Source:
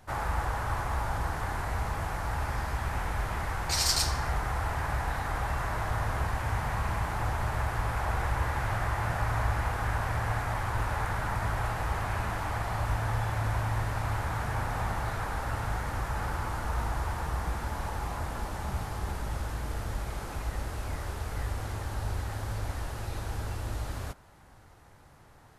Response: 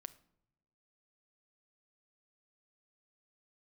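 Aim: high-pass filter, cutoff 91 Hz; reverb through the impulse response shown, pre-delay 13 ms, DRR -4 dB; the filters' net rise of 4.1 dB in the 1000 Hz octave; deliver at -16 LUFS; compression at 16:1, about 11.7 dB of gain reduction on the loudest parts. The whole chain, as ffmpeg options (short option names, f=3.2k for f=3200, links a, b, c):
-filter_complex "[0:a]highpass=91,equalizer=f=1k:t=o:g=5,acompressor=threshold=-34dB:ratio=16,asplit=2[a][b];[1:a]atrim=start_sample=2205,adelay=13[c];[b][c]afir=irnorm=-1:irlink=0,volume=9.5dB[d];[a][d]amix=inputs=2:normalize=0,volume=17dB"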